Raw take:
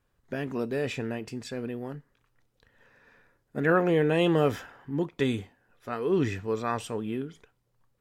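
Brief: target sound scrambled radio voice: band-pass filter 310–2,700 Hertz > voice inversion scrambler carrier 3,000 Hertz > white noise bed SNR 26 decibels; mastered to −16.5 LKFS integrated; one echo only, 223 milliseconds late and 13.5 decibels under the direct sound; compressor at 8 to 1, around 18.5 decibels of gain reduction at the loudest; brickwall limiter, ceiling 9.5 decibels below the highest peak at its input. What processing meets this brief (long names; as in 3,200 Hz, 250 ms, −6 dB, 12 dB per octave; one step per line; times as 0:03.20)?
downward compressor 8 to 1, threshold −39 dBFS
brickwall limiter −37 dBFS
band-pass filter 310–2,700 Hz
single-tap delay 223 ms −13.5 dB
voice inversion scrambler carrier 3,000 Hz
white noise bed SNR 26 dB
level +30 dB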